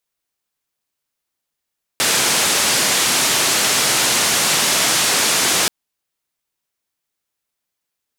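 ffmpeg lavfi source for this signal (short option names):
-f lavfi -i "anoisesrc=c=white:d=3.68:r=44100:seed=1,highpass=f=130,lowpass=f=8900,volume=-7.8dB"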